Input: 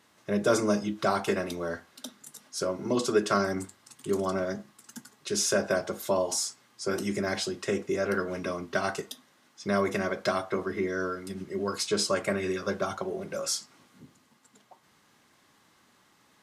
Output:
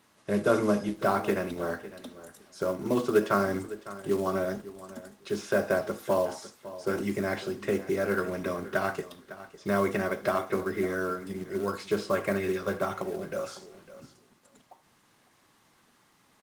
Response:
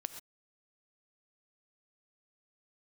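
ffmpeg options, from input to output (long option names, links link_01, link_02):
-filter_complex "[0:a]acrossover=split=3100[link_01][link_02];[link_02]acompressor=threshold=-49dB:ratio=4:attack=1:release=60[link_03];[link_01][link_03]amix=inputs=2:normalize=0,aecho=1:1:555|1110:0.168|0.0252,acrossover=split=3800[link_04][link_05];[link_04]acrusher=bits=5:mode=log:mix=0:aa=0.000001[link_06];[link_06][link_05]amix=inputs=2:normalize=0[link_07];[1:a]atrim=start_sample=2205,afade=type=out:start_time=0.13:duration=0.01,atrim=end_sample=6174[link_08];[link_07][link_08]afir=irnorm=-1:irlink=0,volume=3dB" -ar 48000 -c:a libopus -b:a 24k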